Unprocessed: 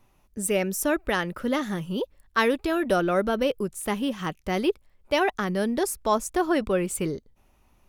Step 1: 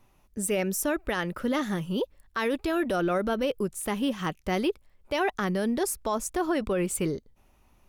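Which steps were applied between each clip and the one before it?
peak limiter -18.5 dBFS, peak gain reduction 9 dB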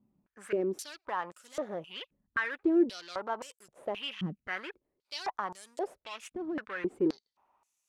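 Chebyshev shaper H 8 -21 dB, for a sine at -18 dBFS; step-sequenced band-pass 3.8 Hz 210–7500 Hz; trim +4.5 dB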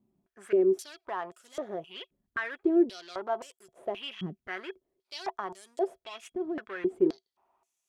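small resonant body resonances 380/680/3300 Hz, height 12 dB, ringing for 95 ms; trim -2 dB

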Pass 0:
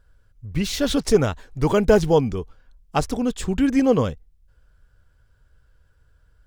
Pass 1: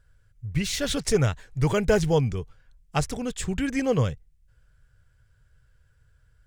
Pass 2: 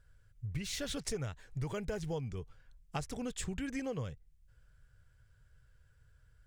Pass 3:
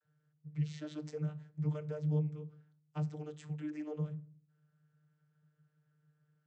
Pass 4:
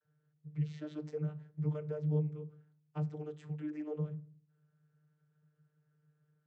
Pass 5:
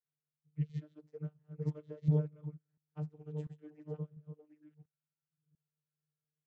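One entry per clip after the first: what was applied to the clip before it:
ten-band graphic EQ 125 Hz +9 dB, 250 Hz -6 dB, 1 kHz -3 dB, 2 kHz +6 dB, 8 kHz +6 dB; trim -4.5 dB
compression 6:1, threshold -32 dBFS, peak gain reduction 15.5 dB; trim -3.5 dB
simulated room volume 450 m³, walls furnished, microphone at 0.46 m; vocoder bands 32, saw 151 Hz; trim +2 dB
low-pass 2.2 kHz 6 dB/octave; peaking EQ 410 Hz +5.5 dB 0.33 oct
chunks repeated in reverse 694 ms, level -3.5 dB; upward expansion 2.5:1, over -45 dBFS; trim +4 dB

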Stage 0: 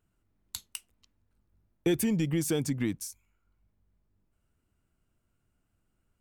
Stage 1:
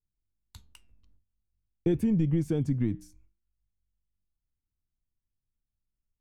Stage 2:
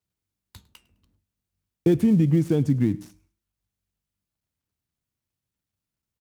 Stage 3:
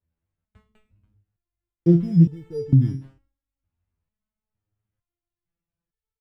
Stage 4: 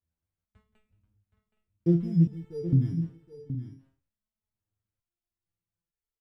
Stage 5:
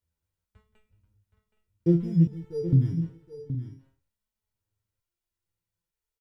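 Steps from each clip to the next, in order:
gate with hold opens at -59 dBFS; tilt EQ -4 dB/octave; flange 0.49 Hz, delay 5.1 ms, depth 3.2 ms, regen -88%; trim -2 dB
dead-time distortion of 0.062 ms; high-pass 100 Hz 12 dB/octave; feedback delay 104 ms, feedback 28%, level -22.5 dB; trim +7 dB
sample-rate reducer 5.3 kHz, jitter 0%; RIAA curve playback; resonator arpeggio 2.2 Hz 83–440 Hz; trim +3 dB
multi-tap echo 174/771/819 ms -18/-11.5/-15 dB; trim -7 dB
comb 2.1 ms, depth 33%; trim +2.5 dB

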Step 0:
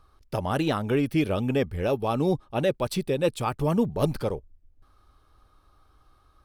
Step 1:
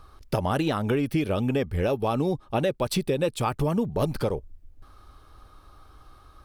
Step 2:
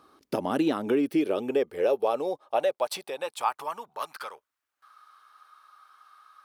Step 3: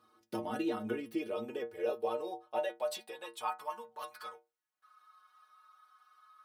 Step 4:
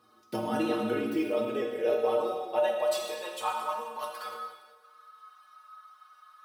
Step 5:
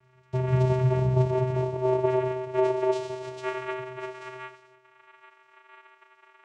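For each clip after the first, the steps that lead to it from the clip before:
compression, threshold -31 dBFS, peak gain reduction 12.5 dB; trim +9 dB
high-pass sweep 270 Hz -> 1.3 kHz, 0.63–4.33 s; trim -4 dB
inharmonic resonator 110 Hz, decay 0.3 s, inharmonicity 0.008; trim +1.5 dB
plate-style reverb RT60 1.4 s, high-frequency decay 1×, DRR -0.5 dB; trim +4.5 dB
vocoder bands 4, square 128 Hz; trim +5 dB

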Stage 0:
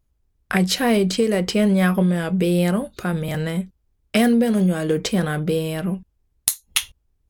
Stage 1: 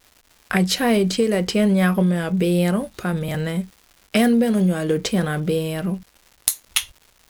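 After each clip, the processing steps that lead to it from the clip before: crackle 400 per s -39 dBFS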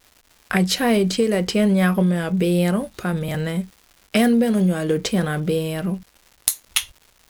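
no audible change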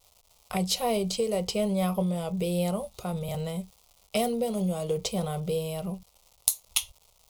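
static phaser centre 690 Hz, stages 4; trim -4 dB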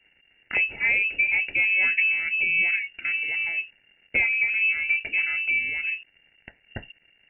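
distance through air 210 m; frequency inversion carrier 2.8 kHz; trim +5 dB

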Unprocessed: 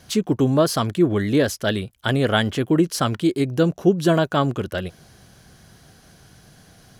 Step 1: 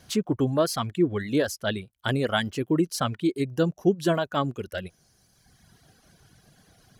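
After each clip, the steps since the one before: reverb removal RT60 1.5 s; trim -4.5 dB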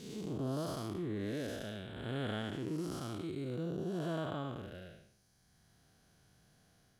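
spectral blur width 306 ms; trim -7.5 dB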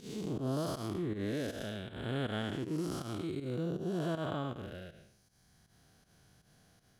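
volume shaper 159 bpm, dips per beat 1, -12 dB, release 121 ms; trim +3 dB

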